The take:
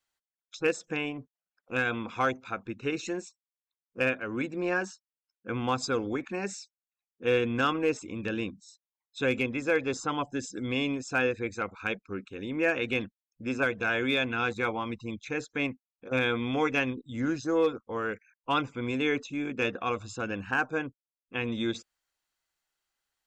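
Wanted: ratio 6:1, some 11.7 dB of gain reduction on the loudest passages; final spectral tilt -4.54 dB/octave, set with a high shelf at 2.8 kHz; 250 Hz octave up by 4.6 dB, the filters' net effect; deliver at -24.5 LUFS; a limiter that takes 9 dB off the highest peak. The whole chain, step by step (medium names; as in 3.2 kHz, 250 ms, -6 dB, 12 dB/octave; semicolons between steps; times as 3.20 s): peaking EQ 250 Hz +5.5 dB; treble shelf 2.8 kHz +4 dB; compression 6:1, threshold -33 dBFS; trim +14.5 dB; peak limiter -13.5 dBFS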